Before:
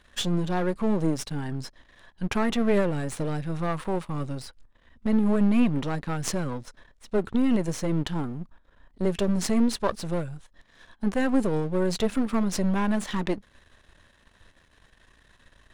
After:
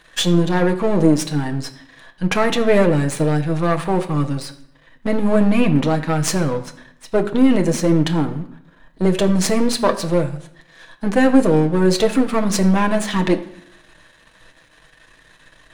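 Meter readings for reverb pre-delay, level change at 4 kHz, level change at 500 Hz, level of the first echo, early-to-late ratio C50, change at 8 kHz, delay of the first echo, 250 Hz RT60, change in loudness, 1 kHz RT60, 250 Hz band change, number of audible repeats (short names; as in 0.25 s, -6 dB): 6 ms, +10.0 dB, +10.5 dB, none, 13.5 dB, +10.0 dB, none, 0.90 s, +9.0 dB, 0.70 s, +8.0 dB, none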